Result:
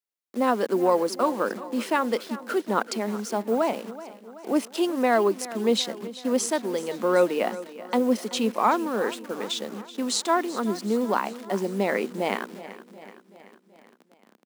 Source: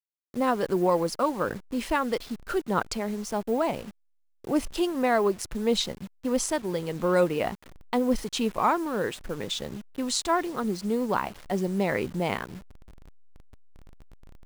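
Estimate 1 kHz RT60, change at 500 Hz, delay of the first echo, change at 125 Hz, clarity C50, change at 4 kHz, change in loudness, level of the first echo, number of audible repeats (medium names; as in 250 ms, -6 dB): no reverb, +2.5 dB, 379 ms, -4.5 dB, no reverb, +1.5 dB, +2.0 dB, -16.0 dB, 4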